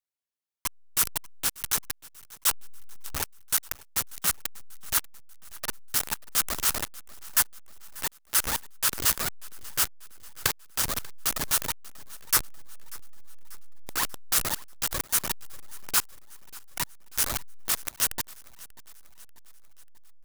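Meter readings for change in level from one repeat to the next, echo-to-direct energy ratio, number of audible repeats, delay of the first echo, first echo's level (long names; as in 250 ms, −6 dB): −5.5 dB, −20.0 dB, 3, 589 ms, −21.5 dB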